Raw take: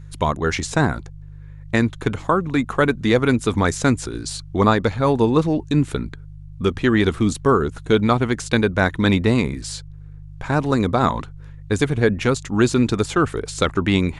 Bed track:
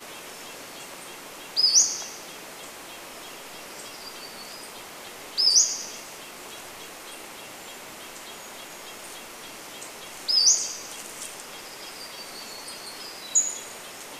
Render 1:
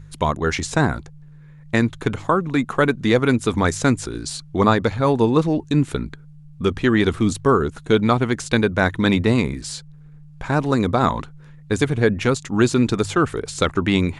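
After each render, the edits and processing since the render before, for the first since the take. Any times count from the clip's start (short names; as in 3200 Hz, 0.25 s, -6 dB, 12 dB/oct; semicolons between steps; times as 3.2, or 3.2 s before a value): de-hum 50 Hz, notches 2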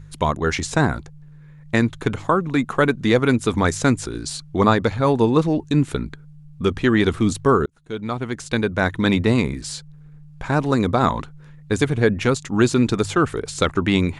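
7.66–9.56 fade in equal-power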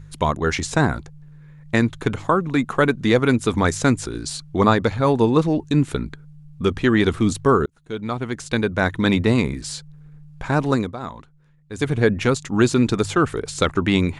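10.74–11.9 dip -13.5 dB, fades 0.17 s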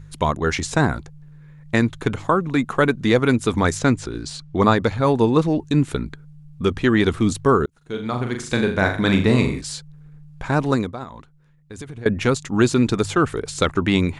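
3.79–4.61 air absorption 61 m; 7.77–9.61 flutter echo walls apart 7 m, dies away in 0.43 s; 11.03–12.06 compressor 5:1, threshold -32 dBFS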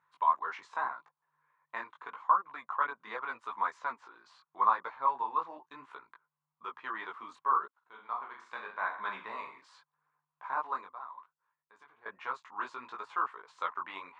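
ladder band-pass 1100 Hz, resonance 75%; chorus voices 2, 0.83 Hz, delay 19 ms, depth 4.7 ms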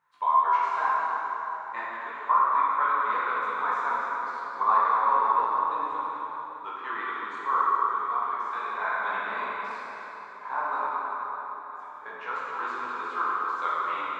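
plate-style reverb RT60 4.4 s, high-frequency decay 0.65×, DRR -7.5 dB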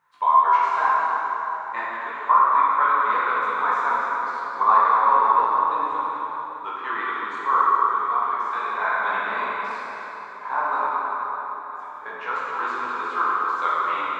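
gain +5.5 dB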